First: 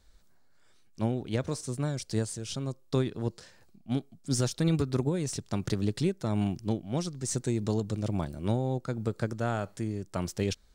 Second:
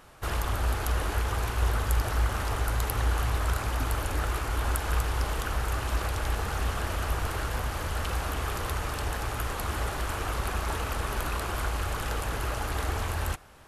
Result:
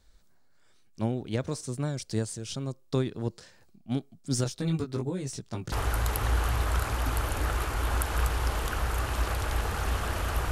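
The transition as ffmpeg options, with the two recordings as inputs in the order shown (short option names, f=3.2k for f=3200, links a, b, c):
-filter_complex "[0:a]asettb=1/sr,asplit=3[a][b][c];[a]atrim=end=4.444[d];[b]atrim=start=4.44:end=5.72,asetpts=PTS-STARTPTS,afade=t=in:d=0.004:c=qsin,afade=t=out:st=1.276:d=0.004:c=qsin,flanger=delay=15:depth=3.2:speed=1.2[e];[c]atrim=start=5.716[f];[d][e]acrossfade=d=0.004:c1=hsin:c2=qsin[g];[g][f]acrossfade=d=0.004:c1=qsin:c2=hsin,apad=whole_dur=10.51,atrim=end=10.51,atrim=end=5.722[h];[1:a]atrim=start=2.458:end=7.25[i];[h][i]acrossfade=d=0.004:c1=hsin:c2=hsin"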